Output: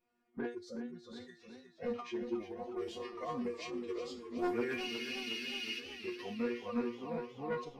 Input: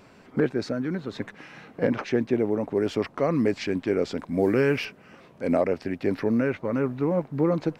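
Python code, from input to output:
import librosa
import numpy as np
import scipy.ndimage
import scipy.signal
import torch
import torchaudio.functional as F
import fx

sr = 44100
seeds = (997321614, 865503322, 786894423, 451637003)

y = fx.noise_reduce_blind(x, sr, reduce_db=19)
y = fx.resonator_bank(y, sr, root=60, chord='fifth', decay_s=0.33)
y = 10.0 ** (-35.0 / 20.0) * np.tanh(y / 10.0 ** (-35.0 / 20.0))
y = fx.pitch_keep_formants(y, sr, semitones=-1.5)
y = fx.spec_freeze(y, sr, seeds[0], at_s=4.84, hold_s=0.96)
y = fx.echo_warbled(y, sr, ms=365, feedback_pct=63, rate_hz=2.8, cents=65, wet_db=-10.0)
y = y * librosa.db_to_amplitude(7.0)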